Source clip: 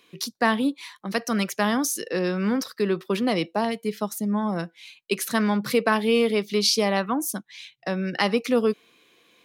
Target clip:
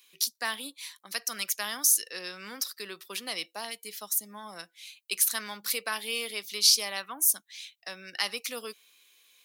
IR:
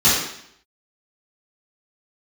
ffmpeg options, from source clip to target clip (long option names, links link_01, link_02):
-af "aderivative,acontrast=20"